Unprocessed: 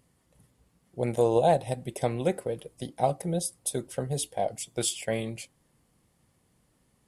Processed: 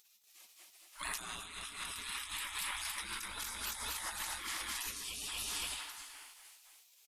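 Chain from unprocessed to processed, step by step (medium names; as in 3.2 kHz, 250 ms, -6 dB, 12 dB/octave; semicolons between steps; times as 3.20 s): on a send at -10 dB: reverberation RT60 2.0 s, pre-delay 5 ms; on the sum: painted sound noise, 4.84–5.27 s, 540–2300 Hz -33 dBFS; peaking EQ 1.5 kHz +11.5 dB 0.5 oct; in parallel at +3 dB: peak limiter -18.5 dBFS, peak gain reduction 9 dB; on the sum: spectral gate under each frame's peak -30 dB weak; multi-tap echo 63/217/238/514/600 ms -13/-9/-4/-6.5/-19.5 dB; compressor with a negative ratio -48 dBFS, ratio -1; trim +5.5 dB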